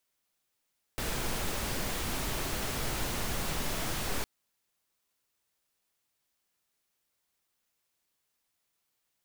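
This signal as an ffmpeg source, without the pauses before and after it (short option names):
-f lavfi -i "anoisesrc=c=pink:a=0.115:d=3.26:r=44100:seed=1"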